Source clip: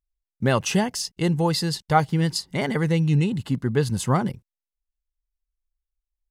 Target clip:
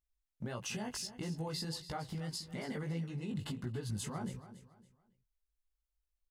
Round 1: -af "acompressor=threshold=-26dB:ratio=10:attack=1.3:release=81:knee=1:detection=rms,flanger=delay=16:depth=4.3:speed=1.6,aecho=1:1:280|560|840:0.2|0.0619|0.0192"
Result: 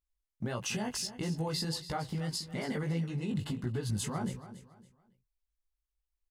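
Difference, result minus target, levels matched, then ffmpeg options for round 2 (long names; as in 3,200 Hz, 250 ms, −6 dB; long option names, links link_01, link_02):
downward compressor: peak gain reduction −5.5 dB
-af "acompressor=threshold=-32dB:ratio=10:attack=1.3:release=81:knee=1:detection=rms,flanger=delay=16:depth=4.3:speed=1.6,aecho=1:1:280|560|840:0.2|0.0619|0.0192"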